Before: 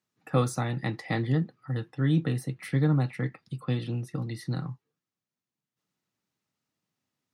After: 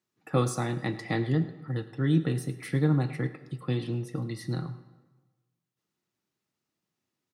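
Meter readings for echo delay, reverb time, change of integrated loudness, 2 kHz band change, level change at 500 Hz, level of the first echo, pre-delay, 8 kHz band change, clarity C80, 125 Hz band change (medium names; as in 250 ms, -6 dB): 106 ms, 1.3 s, 0.0 dB, -0.5 dB, +1.0 dB, -18.5 dB, 3 ms, +1.5 dB, 13.5 dB, -1.0 dB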